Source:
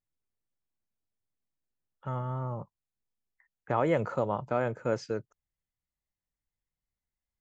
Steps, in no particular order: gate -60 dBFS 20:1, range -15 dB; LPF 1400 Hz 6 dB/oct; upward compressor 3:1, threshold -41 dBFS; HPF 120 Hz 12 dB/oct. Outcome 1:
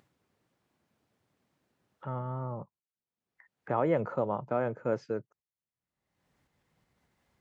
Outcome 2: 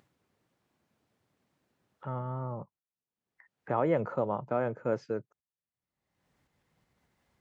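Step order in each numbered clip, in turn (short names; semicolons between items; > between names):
gate > LPF > upward compressor > HPF; LPF > gate > upward compressor > HPF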